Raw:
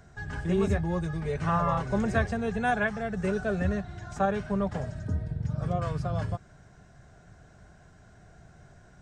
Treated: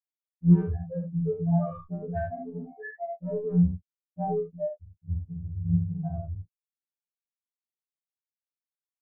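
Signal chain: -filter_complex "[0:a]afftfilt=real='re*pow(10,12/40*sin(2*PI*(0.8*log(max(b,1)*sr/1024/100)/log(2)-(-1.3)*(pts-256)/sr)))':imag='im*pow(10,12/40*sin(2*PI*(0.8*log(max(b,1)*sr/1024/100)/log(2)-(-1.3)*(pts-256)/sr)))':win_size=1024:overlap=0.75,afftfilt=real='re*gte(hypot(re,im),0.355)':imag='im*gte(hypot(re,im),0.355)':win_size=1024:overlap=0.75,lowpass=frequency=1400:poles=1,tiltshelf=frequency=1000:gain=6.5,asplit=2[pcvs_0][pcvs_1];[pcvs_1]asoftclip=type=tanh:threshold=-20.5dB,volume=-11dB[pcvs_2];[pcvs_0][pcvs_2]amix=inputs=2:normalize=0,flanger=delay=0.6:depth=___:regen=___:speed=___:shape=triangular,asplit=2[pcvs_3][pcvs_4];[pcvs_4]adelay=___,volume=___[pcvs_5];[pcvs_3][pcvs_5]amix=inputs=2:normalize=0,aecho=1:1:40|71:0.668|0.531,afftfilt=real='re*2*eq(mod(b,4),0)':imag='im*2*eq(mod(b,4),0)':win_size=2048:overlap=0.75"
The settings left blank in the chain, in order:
1.5, 79, 1.6, 18, -11dB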